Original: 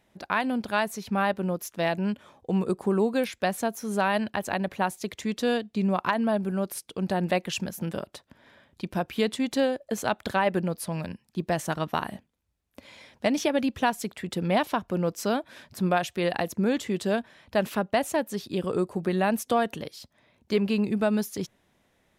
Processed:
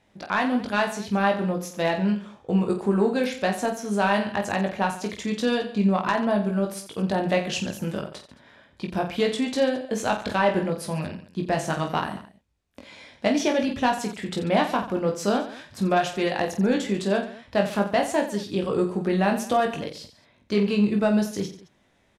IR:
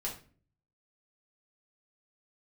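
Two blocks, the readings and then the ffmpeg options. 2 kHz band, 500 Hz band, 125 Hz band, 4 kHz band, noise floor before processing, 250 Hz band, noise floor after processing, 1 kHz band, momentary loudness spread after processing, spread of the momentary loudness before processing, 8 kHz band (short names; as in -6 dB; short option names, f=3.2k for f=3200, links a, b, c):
+2.5 dB, +3.0 dB, +3.0 dB, +3.0 dB, -70 dBFS, +3.0 dB, -63 dBFS, +3.0 dB, 8 LU, 8 LU, +1.5 dB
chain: -af "lowpass=8.4k,aeval=exprs='0.398*sin(PI/2*1.41*val(0)/0.398)':c=same,aecho=1:1:20|48|87.2|142.1|218.9:0.631|0.398|0.251|0.158|0.1,volume=-5.5dB"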